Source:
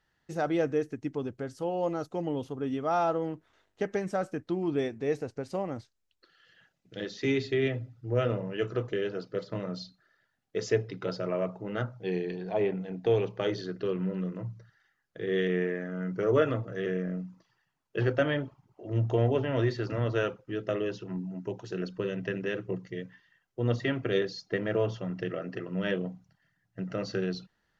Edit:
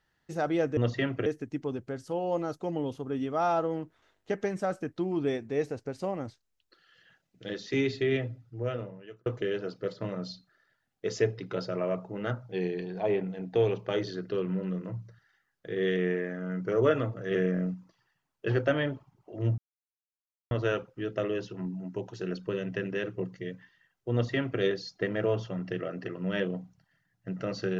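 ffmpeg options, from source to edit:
-filter_complex "[0:a]asplit=8[s0][s1][s2][s3][s4][s5][s6][s7];[s0]atrim=end=0.772[s8];[s1]atrim=start=23.628:end=24.122[s9];[s2]atrim=start=0.768:end=8.77,asetpts=PTS-STARTPTS,afade=t=out:st=6.942:d=1.06[s10];[s3]atrim=start=8.77:end=16.822,asetpts=PTS-STARTPTS,afade=t=in:d=0.004:c=hsin[s11];[s4]atrim=start=16.818:end=17.252,asetpts=PTS-STARTPTS,volume=1.58[s12];[s5]atrim=start=17.248:end=19.09,asetpts=PTS-STARTPTS,afade=t=out:st=1.838:d=0.004:c=hsin[s13];[s6]atrim=start=19.09:end=20.02,asetpts=PTS-STARTPTS,volume=0[s14];[s7]atrim=start=20.02,asetpts=PTS-STARTPTS,afade=t=in:d=0.004:c=hsin[s15];[s8][s9]acrossfade=d=0.004:c1=hsin:c2=hsin[s16];[s10][s11]concat=n=2:v=0:a=1[s17];[s16][s17]acrossfade=d=0.004:c1=hsin:c2=hsin[s18];[s18][s12]acrossfade=d=0.004:c1=hsin:c2=hsin[s19];[s13][s14][s15]concat=n=3:v=0:a=1[s20];[s19][s20]acrossfade=d=0.004:c1=hsin:c2=hsin"

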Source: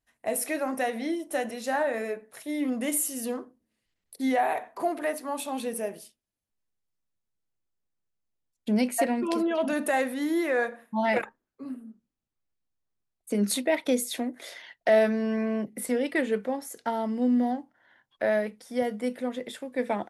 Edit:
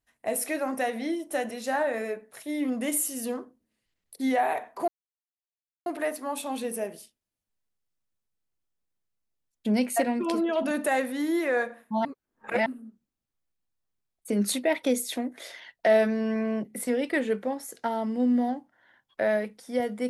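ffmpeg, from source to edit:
-filter_complex "[0:a]asplit=4[s0][s1][s2][s3];[s0]atrim=end=4.88,asetpts=PTS-STARTPTS,afade=t=out:st=4.876:d=0.004:c=hsin,apad=pad_dur=0.98[s4];[s1]atrim=start=4.88:end=11.072,asetpts=PTS-STARTPTS,afade=t=in:d=0.004:c=hsin[s5];[s2]atrim=start=11.068:end=11.682,asetpts=PTS-STARTPTS,areverse[s6];[s3]atrim=start=11.678[s7];[s4][s5]concat=n=2:v=0:a=1[s8];[s8][s6]acrossfade=d=0.004:c1=hsin:c2=hsin[s9];[s9][s7]acrossfade=d=0.004:c1=hsin:c2=hsin"

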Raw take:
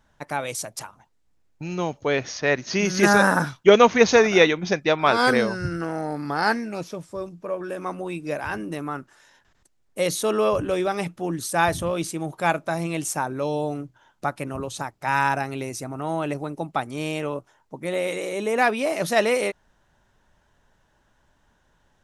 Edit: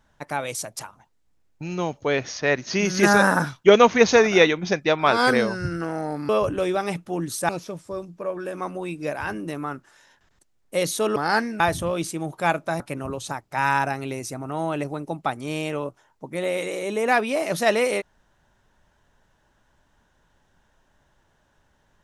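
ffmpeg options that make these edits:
-filter_complex "[0:a]asplit=6[s0][s1][s2][s3][s4][s5];[s0]atrim=end=6.292[s6];[s1]atrim=start=10.398:end=11.602[s7];[s2]atrim=start=6.728:end=10.402[s8];[s3]atrim=start=6.288:end=6.732[s9];[s4]atrim=start=11.598:end=12.802[s10];[s5]atrim=start=14.298[s11];[s6][s7]acrossfade=d=0.004:c1=hsin:c2=hsin[s12];[s12][s8]acrossfade=d=0.004:c1=hsin:c2=hsin[s13];[s13][s9]acrossfade=d=0.004:c1=hsin:c2=hsin[s14];[s14][s10]acrossfade=d=0.004:c1=hsin:c2=hsin[s15];[s15][s11]acrossfade=d=0.004:c1=hsin:c2=hsin"

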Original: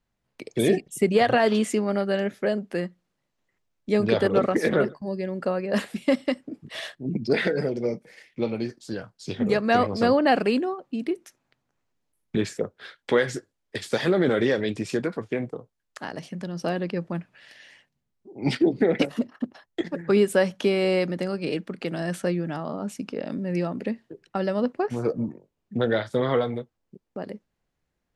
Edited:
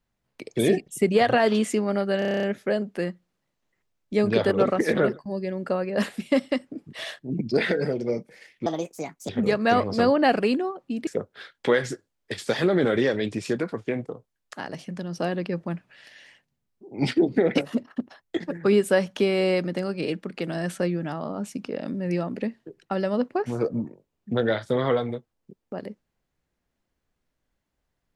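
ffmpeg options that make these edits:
-filter_complex "[0:a]asplit=12[s0][s1][s2][s3][s4][s5][s6][s7][s8][s9][s10][s11];[s0]atrim=end=2.222[s12];[s1]atrim=start=2.188:end=2.222[s13];[s2]atrim=start=2.188:end=2.222[s14];[s3]atrim=start=2.188:end=2.222[s15];[s4]atrim=start=2.188:end=2.222[s16];[s5]atrim=start=2.188:end=2.222[s17];[s6]atrim=start=2.188:end=2.222[s18];[s7]atrim=start=2.188:end=2.222[s19];[s8]atrim=start=2.188:end=8.424[s20];[s9]atrim=start=8.42:end=9.32,asetpts=PTS-STARTPTS,asetrate=63063,aresample=44100,atrim=end_sample=27755,asetpts=PTS-STARTPTS[s21];[s10]atrim=start=9.316:end=11.102[s22];[s11]atrim=start=12.508[s23];[s12][s13]acrossfade=d=0.004:c1=hsin:c2=hsin[s24];[s24][s14]acrossfade=d=0.004:c1=hsin:c2=hsin[s25];[s25][s15]acrossfade=d=0.004:c1=hsin:c2=hsin[s26];[s26][s16]acrossfade=d=0.004:c1=hsin:c2=hsin[s27];[s27][s17]acrossfade=d=0.004:c1=hsin:c2=hsin[s28];[s28][s18]acrossfade=d=0.004:c1=hsin:c2=hsin[s29];[s29][s19]acrossfade=d=0.004:c1=hsin:c2=hsin[s30];[s30][s20]acrossfade=d=0.004:c1=hsin:c2=hsin[s31];[s31][s21]acrossfade=d=0.004:c1=hsin:c2=hsin[s32];[s32][s22]acrossfade=d=0.004:c1=hsin:c2=hsin[s33];[s33][s23]acrossfade=d=0.004:c1=hsin:c2=hsin"

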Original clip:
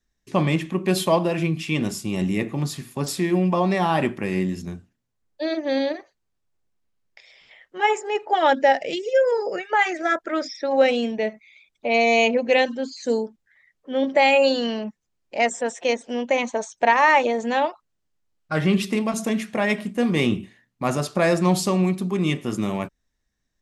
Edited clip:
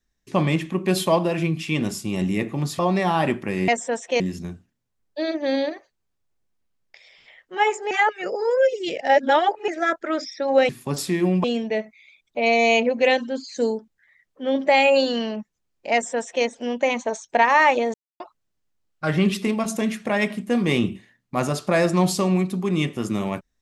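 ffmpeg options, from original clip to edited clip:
-filter_complex "[0:a]asplit=10[s0][s1][s2][s3][s4][s5][s6][s7][s8][s9];[s0]atrim=end=2.792[s10];[s1]atrim=start=3.538:end=4.432[s11];[s2]atrim=start=15.408:end=15.932[s12];[s3]atrim=start=4.428:end=8.142[s13];[s4]atrim=start=8.138:end=9.912,asetpts=PTS-STARTPTS,areverse[s14];[s5]atrim=start=9.908:end=10.922[s15];[s6]atrim=start=2.788:end=3.542[s16];[s7]atrim=start=10.918:end=17.42,asetpts=PTS-STARTPTS,afade=t=out:st=6.498:d=0.004:c=hsin[s17];[s8]atrim=start=17.42:end=17.68,asetpts=PTS-STARTPTS,volume=0[s18];[s9]atrim=start=17.68,asetpts=PTS-STARTPTS,afade=t=in:d=0.004:c=hsin[s19];[s10][s11]acrossfade=d=0.004:c1=hsin:c2=hsin[s20];[s20][s12]acrossfade=d=0.004:c1=hsin:c2=hsin[s21];[s21][s13]acrossfade=d=0.004:c1=hsin:c2=hsin[s22];[s22][s14]acrossfade=d=0.004:c1=hsin:c2=hsin[s23];[s23][s15]acrossfade=d=0.004:c1=hsin:c2=hsin[s24];[s24][s16]acrossfade=d=0.004:c1=hsin:c2=hsin[s25];[s17][s18][s19]concat=n=3:v=0:a=1[s26];[s25][s26]acrossfade=d=0.004:c1=hsin:c2=hsin"

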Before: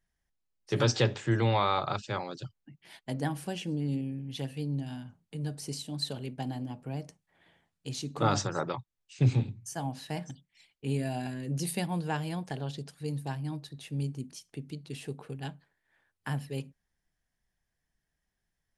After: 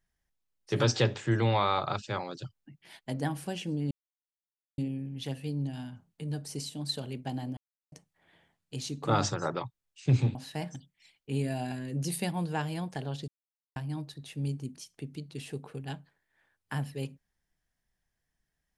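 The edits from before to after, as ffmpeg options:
-filter_complex "[0:a]asplit=7[s0][s1][s2][s3][s4][s5][s6];[s0]atrim=end=3.91,asetpts=PTS-STARTPTS,afade=t=out:st=3.906:d=0.004:c=hsin,apad=pad_dur=0.87[s7];[s1]atrim=start=3.91:end=6.7,asetpts=PTS-STARTPTS,afade=t=in:d=0.004:c=hsin,afade=t=out:st=2.786:d=0.004:c=hsin[s8];[s2]atrim=start=6.7:end=7.05,asetpts=PTS-STARTPTS,volume=0[s9];[s3]atrim=start=7.05:end=9.482,asetpts=PTS-STARTPTS,afade=t=in:d=0.004:c=hsin[s10];[s4]atrim=start=9.898:end=12.83,asetpts=PTS-STARTPTS,afade=t=out:st=2.928:d=0.004:c=hsin[s11];[s5]atrim=start=12.83:end=13.31,asetpts=PTS-STARTPTS,volume=0[s12];[s6]atrim=start=13.31,asetpts=PTS-STARTPTS,afade=t=in:d=0.004:c=hsin[s13];[s7][s8][s9][s10]concat=n=4:v=0:a=1[s14];[s11][s12][s13]concat=n=3:v=0:a=1[s15];[s14][s15]acrossfade=d=0.004:c1=hsin:c2=hsin"

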